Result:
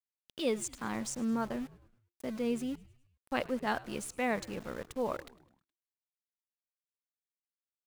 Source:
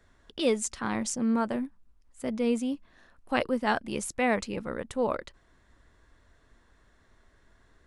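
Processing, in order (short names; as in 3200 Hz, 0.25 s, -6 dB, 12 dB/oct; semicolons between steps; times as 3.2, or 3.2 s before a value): sample gate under -39.5 dBFS; frequency-shifting echo 0.105 s, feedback 55%, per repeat -88 Hz, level -21 dB; gain -6 dB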